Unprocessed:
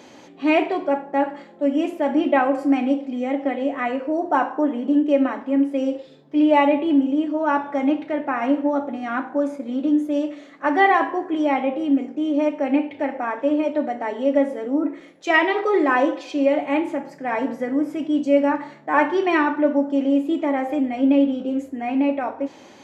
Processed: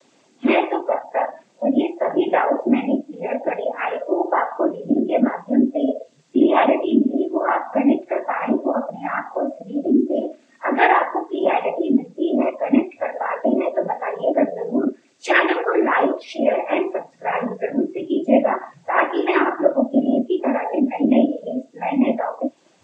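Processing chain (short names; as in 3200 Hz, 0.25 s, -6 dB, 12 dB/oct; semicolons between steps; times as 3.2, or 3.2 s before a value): added noise white -48 dBFS; in parallel at +1 dB: compressor, threshold -32 dBFS, peak gain reduction 19 dB; on the sum: noise vocoder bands 16; spectral noise reduction 18 dB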